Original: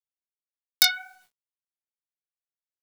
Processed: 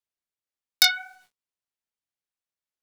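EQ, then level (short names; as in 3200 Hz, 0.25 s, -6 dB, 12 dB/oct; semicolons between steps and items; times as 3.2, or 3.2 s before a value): high shelf 11000 Hz -9 dB; +2.5 dB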